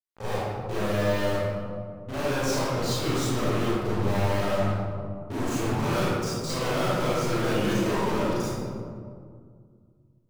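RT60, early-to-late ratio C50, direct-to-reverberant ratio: 2.1 s, −4.5 dB, −10.0 dB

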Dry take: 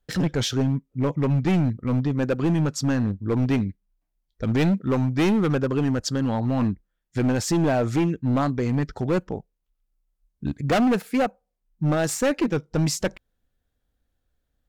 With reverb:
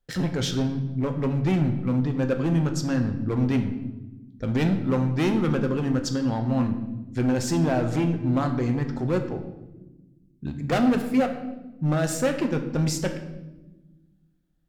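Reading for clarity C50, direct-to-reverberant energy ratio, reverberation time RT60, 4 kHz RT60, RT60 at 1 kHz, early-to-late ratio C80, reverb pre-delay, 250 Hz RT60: 9.0 dB, 5.0 dB, 1.1 s, 0.80 s, 0.90 s, 11.0 dB, 6 ms, 2.0 s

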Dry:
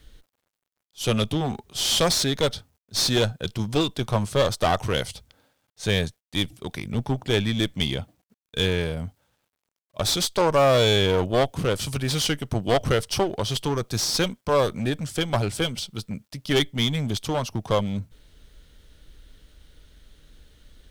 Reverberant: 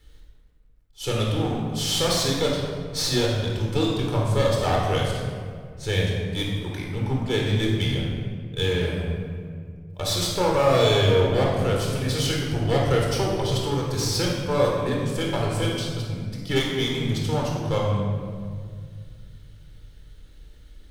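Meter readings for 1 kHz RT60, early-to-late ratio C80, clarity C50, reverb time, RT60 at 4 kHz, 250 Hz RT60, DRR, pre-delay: 1.8 s, 3.0 dB, 0.5 dB, 2.0 s, 1.2 s, 2.8 s, −2.0 dB, 22 ms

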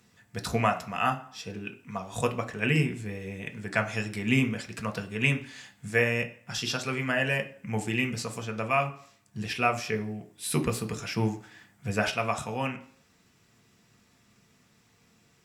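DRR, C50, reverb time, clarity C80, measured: 5.0 dB, 14.5 dB, 0.55 s, 18.5 dB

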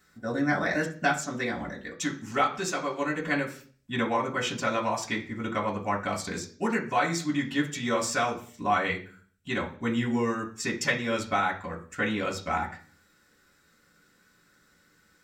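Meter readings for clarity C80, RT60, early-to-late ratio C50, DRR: 17.0 dB, 0.45 s, 11.5 dB, −3.5 dB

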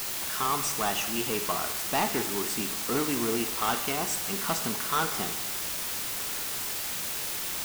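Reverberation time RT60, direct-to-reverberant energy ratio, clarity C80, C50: 1.0 s, 7.5 dB, 12.5 dB, 10.0 dB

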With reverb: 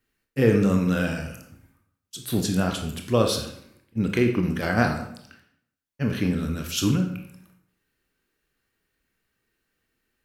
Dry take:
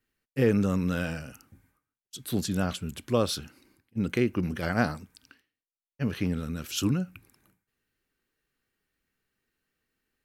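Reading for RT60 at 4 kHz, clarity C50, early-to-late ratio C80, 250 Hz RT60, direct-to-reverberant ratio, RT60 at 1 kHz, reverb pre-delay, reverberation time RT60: 0.55 s, 7.0 dB, 11.0 dB, 0.75 s, 3.5 dB, 0.70 s, 20 ms, 0.70 s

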